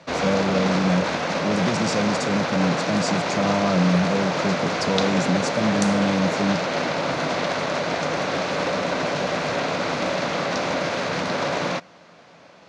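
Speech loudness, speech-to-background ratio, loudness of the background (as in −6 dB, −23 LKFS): −24.5 LKFS, −0.5 dB, −24.0 LKFS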